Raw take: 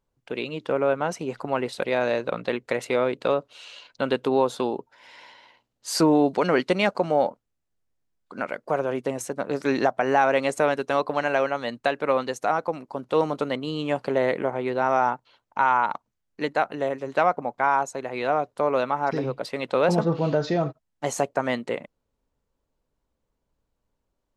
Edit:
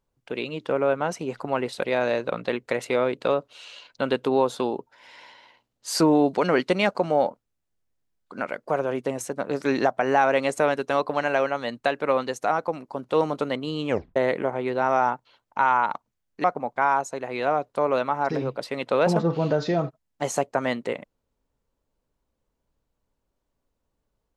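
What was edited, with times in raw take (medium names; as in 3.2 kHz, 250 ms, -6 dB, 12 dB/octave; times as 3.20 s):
13.89 s: tape stop 0.27 s
16.44–17.26 s: delete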